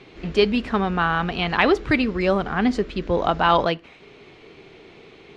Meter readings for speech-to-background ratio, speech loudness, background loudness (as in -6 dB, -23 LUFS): 19.5 dB, -21.5 LUFS, -41.0 LUFS